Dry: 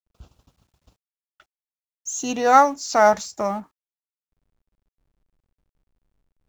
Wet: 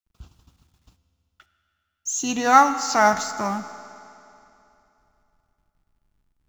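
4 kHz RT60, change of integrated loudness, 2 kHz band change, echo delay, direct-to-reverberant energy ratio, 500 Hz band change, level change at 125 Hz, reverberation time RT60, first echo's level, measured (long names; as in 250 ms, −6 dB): 2.7 s, −1.0 dB, +2.0 dB, no echo audible, 10.5 dB, −6.0 dB, can't be measured, 2.9 s, no echo audible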